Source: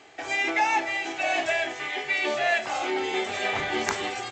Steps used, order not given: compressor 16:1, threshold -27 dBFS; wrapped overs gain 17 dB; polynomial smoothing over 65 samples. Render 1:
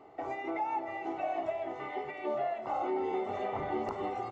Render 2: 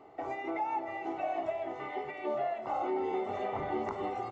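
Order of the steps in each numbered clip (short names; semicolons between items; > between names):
compressor > wrapped overs > polynomial smoothing; compressor > polynomial smoothing > wrapped overs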